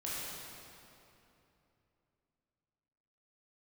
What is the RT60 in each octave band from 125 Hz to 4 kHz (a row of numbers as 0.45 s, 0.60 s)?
3.7 s, 3.4 s, 3.1 s, 2.8 s, 2.5 s, 2.1 s